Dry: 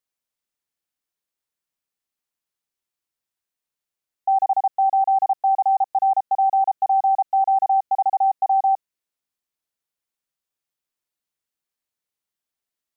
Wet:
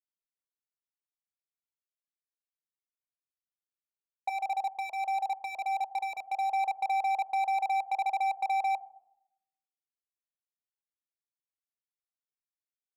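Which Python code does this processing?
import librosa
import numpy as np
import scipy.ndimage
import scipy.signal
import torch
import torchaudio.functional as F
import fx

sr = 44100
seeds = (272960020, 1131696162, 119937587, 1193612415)

y = fx.transient(x, sr, attack_db=12, sustain_db=-4)
y = fx.highpass(y, sr, hz=510.0, slope=6)
y = fx.air_absorb(y, sr, metres=400.0)
y = fx.level_steps(y, sr, step_db=24)
y = fx.room_shoebox(y, sr, seeds[0], volume_m3=2300.0, walls='furnished', distance_m=0.69)
y = np.clip(y, -10.0 ** (-26.0 / 20.0), 10.0 ** (-26.0 / 20.0))
y = fx.notch_cascade(y, sr, direction='rising', hz=1.6, at=(4.29, 6.5))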